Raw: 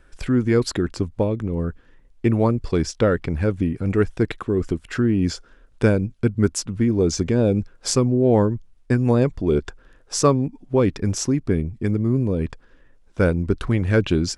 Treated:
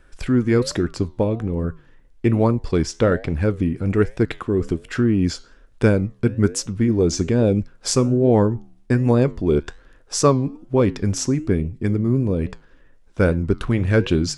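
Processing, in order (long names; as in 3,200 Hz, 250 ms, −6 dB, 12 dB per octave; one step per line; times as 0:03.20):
flanger 1.2 Hz, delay 7.8 ms, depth 6.2 ms, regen −85%
level +5.5 dB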